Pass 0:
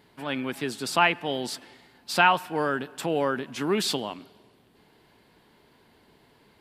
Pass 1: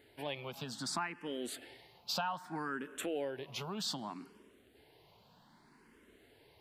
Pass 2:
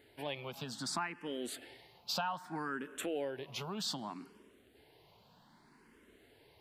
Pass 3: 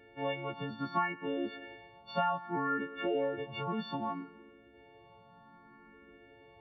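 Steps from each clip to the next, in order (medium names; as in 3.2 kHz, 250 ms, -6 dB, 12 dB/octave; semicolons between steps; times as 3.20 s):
compression 5:1, threshold -31 dBFS, peak gain reduction 15.5 dB; barber-pole phaser +0.64 Hz; trim -1.5 dB
no audible change
partials quantised in pitch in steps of 4 st; Gaussian low-pass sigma 4.2 samples; trim +6 dB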